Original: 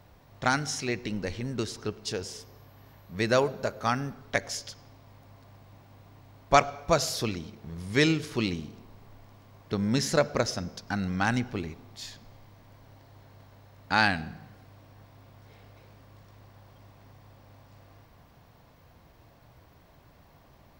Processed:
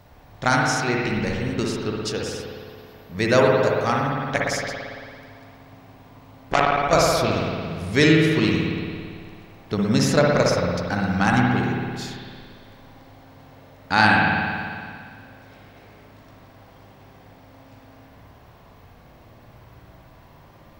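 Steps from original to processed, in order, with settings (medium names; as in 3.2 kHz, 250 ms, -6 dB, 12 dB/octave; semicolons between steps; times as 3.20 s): spring tank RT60 2.1 s, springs 56 ms, chirp 65 ms, DRR -2 dB; 3.82–6.93 s: transformer saturation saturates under 1.6 kHz; trim +4.5 dB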